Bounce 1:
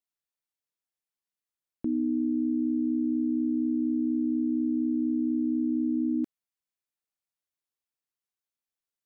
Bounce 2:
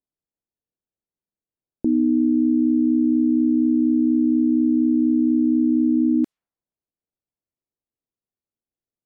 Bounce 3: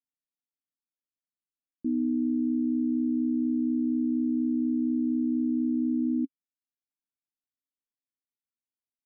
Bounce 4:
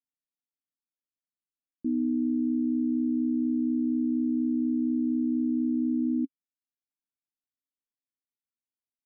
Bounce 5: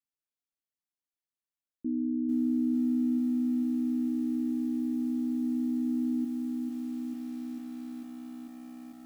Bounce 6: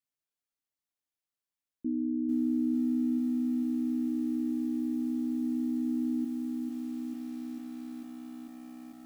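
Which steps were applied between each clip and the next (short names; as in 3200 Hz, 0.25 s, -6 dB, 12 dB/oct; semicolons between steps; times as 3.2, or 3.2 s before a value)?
low-pass opened by the level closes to 480 Hz, open at -25.5 dBFS; gain +9 dB
vocal tract filter i; gain -5.5 dB
nothing audible
lo-fi delay 0.446 s, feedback 80%, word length 9-bit, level -4.5 dB; gain -3.5 dB
reverb, pre-delay 7 ms, DRR 19 dB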